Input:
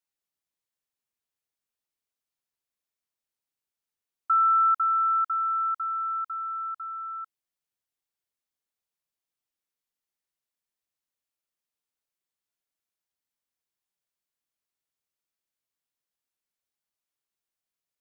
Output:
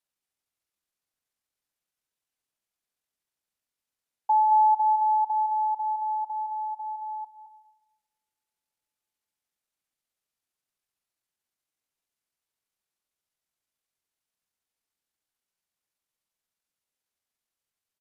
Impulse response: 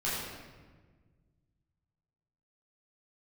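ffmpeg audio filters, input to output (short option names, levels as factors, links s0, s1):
-filter_complex "[0:a]aecho=1:1:218:0.422,asetrate=28595,aresample=44100,atempo=1.54221,asplit=2[s0][s1];[1:a]atrim=start_sample=2205[s2];[s1][s2]afir=irnorm=-1:irlink=0,volume=0.0891[s3];[s0][s3]amix=inputs=2:normalize=0"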